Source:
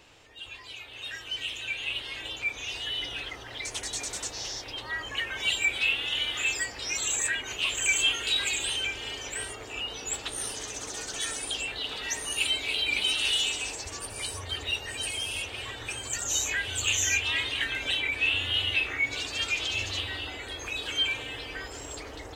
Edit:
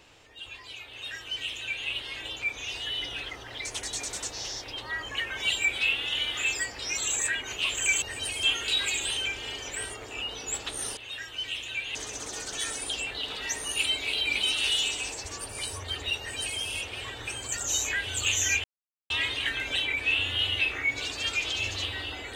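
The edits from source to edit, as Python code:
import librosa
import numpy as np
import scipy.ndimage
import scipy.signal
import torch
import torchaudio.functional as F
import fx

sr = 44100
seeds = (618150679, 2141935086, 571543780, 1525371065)

y = fx.edit(x, sr, fx.duplicate(start_s=0.9, length_s=0.98, to_s=10.56),
    fx.duplicate(start_s=14.8, length_s=0.41, to_s=8.02),
    fx.insert_silence(at_s=17.25, length_s=0.46), tone=tone)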